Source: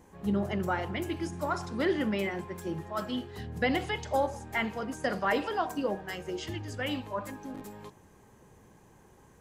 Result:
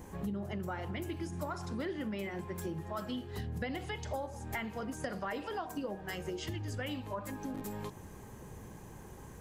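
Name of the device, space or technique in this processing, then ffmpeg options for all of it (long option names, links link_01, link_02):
ASMR close-microphone chain: -af "lowshelf=frequency=170:gain=6.5,acompressor=threshold=-42dB:ratio=6,highshelf=frequency=11000:gain=7.5,volume=5.5dB"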